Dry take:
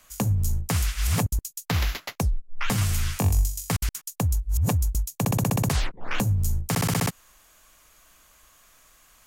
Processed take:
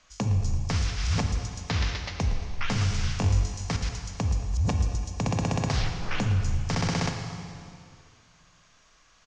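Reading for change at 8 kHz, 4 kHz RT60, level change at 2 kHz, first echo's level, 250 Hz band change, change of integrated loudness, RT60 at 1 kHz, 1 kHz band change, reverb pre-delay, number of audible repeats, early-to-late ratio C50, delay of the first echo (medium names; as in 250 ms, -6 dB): -7.0 dB, 2.2 s, -1.5 dB, -13.5 dB, -2.0 dB, -2.0 dB, 2.3 s, -1.5 dB, 17 ms, 3, 5.0 dB, 113 ms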